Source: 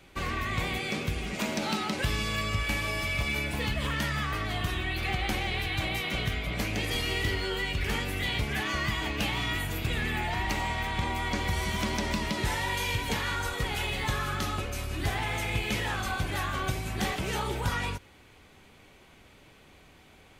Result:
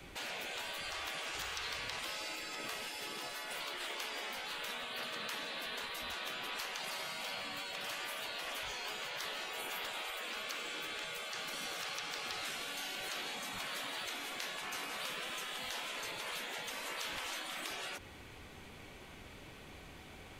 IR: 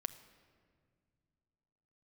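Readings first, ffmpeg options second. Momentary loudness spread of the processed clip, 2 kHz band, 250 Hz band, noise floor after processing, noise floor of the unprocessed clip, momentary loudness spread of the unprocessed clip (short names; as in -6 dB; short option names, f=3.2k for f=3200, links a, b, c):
9 LU, -9.5 dB, -19.5 dB, -53 dBFS, -56 dBFS, 2 LU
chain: -filter_complex "[0:a]acrossover=split=160|640|4100[a][b][c][d];[a]acompressor=threshold=-35dB:ratio=4[e];[b]acompressor=threshold=-39dB:ratio=4[f];[c]acompressor=threshold=-38dB:ratio=4[g];[d]acompressor=threshold=-52dB:ratio=4[h];[e][f][g][h]amix=inputs=4:normalize=0,afftfilt=real='re*lt(hypot(re,im),0.0251)':imag='im*lt(hypot(re,im),0.0251)':win_size=1024:overlap=0.75,volume=3dB"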